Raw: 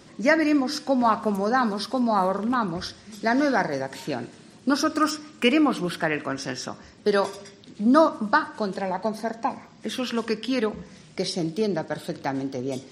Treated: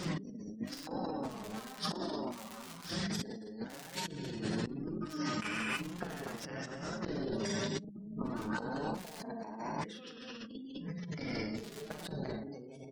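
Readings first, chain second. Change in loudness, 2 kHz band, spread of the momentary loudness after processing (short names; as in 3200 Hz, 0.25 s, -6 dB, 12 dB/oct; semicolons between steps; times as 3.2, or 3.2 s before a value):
-15.0 dB, -14.5 dB, 9 LU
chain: bell 170 Hz +12 dB 0.35 oct; flipped gate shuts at -17 dBFS, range -40 dB; high shelf 9100 Hz -3.5 dB; non-linear reverb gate 0.35 s flat, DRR -2.5 dB; crackle 300/s -42 dBFS; notches 50/100/150/200/250/300/350 Hz; spectral gate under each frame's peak -30 dB strong; doubler 41 ms -10 dB; flange 1 Hz, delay 5.3 ms, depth 4.4 ms, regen +27%; negative-ratio compressor -46 dBFS, ratio -1; mismatched tape noise reduction encoder only; gain +5 dB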